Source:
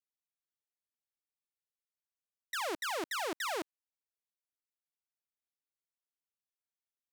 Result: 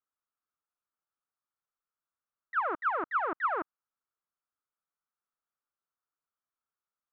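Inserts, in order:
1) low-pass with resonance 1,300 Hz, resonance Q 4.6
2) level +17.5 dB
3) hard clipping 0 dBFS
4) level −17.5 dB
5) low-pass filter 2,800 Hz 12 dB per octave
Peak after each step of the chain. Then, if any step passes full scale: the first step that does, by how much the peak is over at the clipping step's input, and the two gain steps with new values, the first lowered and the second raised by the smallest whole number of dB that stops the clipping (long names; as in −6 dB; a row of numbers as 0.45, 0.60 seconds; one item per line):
−21.0, −3.5, −3.5, −21.0, −21.0 dBFS
no step passes full scale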